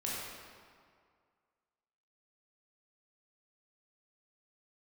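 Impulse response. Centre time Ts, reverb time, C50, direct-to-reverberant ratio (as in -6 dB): 124 ms, 2.1 s, -2.5 dB, -6.5 dB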